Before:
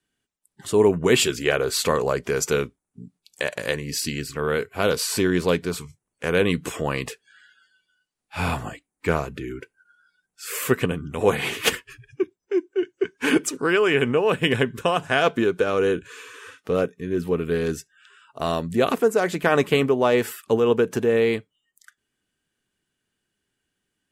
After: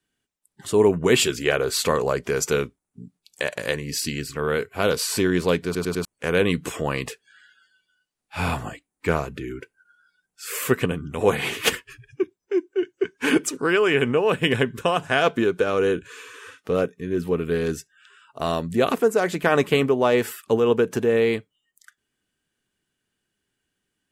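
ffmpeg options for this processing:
ffmpeg -i in.wav -filter_complex "[0:a]asplit=5[link_01][link_02][link_03][link_04][link_05];[link_01]atrim=end=5.752[link_06];[link_02]atrim=start=5.648:end=5.752[link_07];[link_03]atrim=start=5.648:end=5.752[link_08];[link_04]atrim=start=5.648:end=5.752[link_09];[link_05]atrim=start=6.048[link_10];[link_06][link_07]acrossfade=duration=0.004:curve1=hsin:curve2=hsin[link_11];[link_11][link_08]acrossfade=duration=0.004:curve1=hsin:curve2=hsin[link_12];[link_12][link_09]acrossfade=duration=0.004:curve1=hsin:curve2=hsin[link_13];[link_13][link_10]acrossfade=duration=0.004:curve1=hsin:curve2=hsin" out.wav

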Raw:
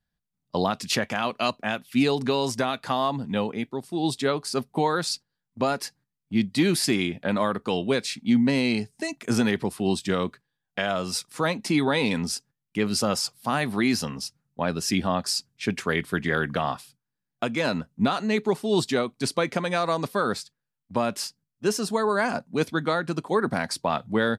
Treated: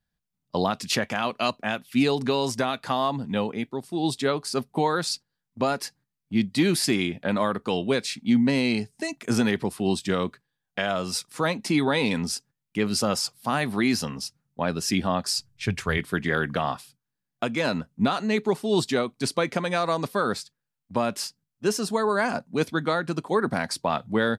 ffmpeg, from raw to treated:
ffmpeg -i in.wav -filter_complex "[0:a]asplit=3[link_01][link_02][link_03];[link_01]afade=type=out:start_time=15.36:duration=0.02[link_04];[link_02]asubboost=boost=11:cutoff=74,afade=type=in:start_time=15.36:duration=0.02,afade=type=out:start_time=15.97:duration=0.02[link_05];[link_03]afade=type=in:start_time=15.97:duration=0.02[link_06];[link_04][link_05][link_06]amix=inputs=3:normalize=0" out.wav

